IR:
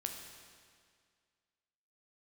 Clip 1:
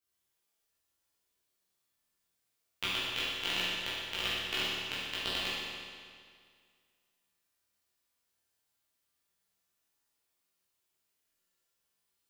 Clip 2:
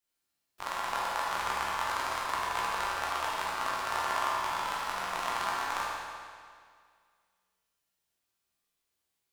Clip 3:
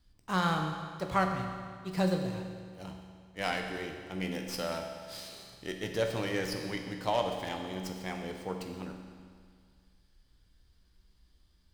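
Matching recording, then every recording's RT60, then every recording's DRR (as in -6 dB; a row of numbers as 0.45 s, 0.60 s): 3; 2.0 s, 2.0 s, 2.0 s; -11.0 dB, -6.5 dB, 3.0 dB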